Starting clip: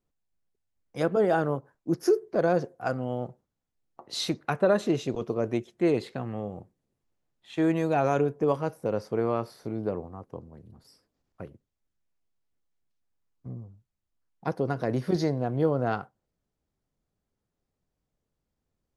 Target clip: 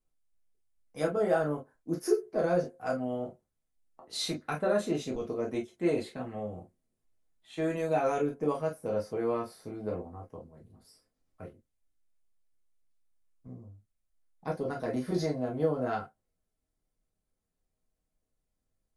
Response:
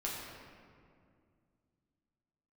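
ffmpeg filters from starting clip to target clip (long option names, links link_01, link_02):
-filter_complex "[0:a]equalizer=frequency=9600:width=1.6:gain=9.5[link_01];[1:a]atrim=start_sample=2205,atrim=end_sample=3969,asetrate=74970,aresample=44100[link_02];[link_01][link_02]afir=irnorm=-1:irlink=0"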